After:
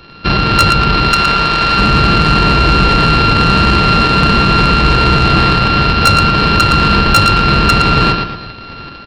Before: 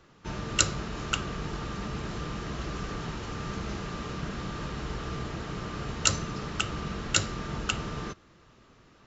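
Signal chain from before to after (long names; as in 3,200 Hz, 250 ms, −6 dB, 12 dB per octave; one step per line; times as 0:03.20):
samples sorted by size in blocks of 32 samples
0:01.09–0:01.79: low-shelf EQ 360 Hz −10 dB
in parallel at −9 dB: bit-depth reduction 8 bits, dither none
on the sum: downsampling to 11,025 Hz
automatic gain control gain up to 6 dB
high-shelf EQ 2,000 Hz +7.5 dB
on a send: repeating echo 114 ms, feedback 37%, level −8 dB
on the sum: soft clipping −15 dBFS, distortion −10 dB
shaped tremolo saw up 2.7 Hz, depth 35%
boost into a limiter +22.5 dB
level −1 dB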